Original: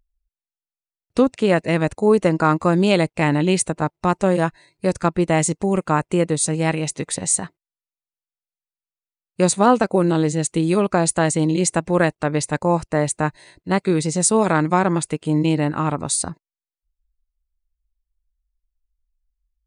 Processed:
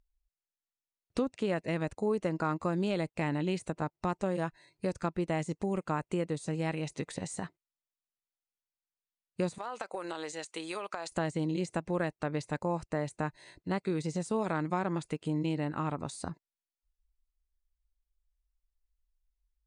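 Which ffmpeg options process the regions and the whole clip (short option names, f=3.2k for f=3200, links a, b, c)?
-filter_complex "[0:a]asettb=1/sr,asplit=3[a][b][c];[a]atrim=end=9.584[d];[b]atrim=start=9.58:end=11.12,asetpts=PTS-STARTPTS,afade=t=in:d=0.004:c=qsin,afade=t=out:st=1.536:d=0.004:c=qsin,highpass=760,acompressor=threshold=-24dB:ratio=12:attack=3.2:release=140:knee=1:detection=peak[e];[c]atrim=start=11.116[f];[d][e]acrossfade=d=0.004:c1=hsin:c2=qsin[g];[g][f]acrossfade=d=0.004:c1=qsin:c2=hsin,deesser=0.6,lowpass=9.1k,acompressor=threshold=-29dB:ratio=2,volume=-5.5dB"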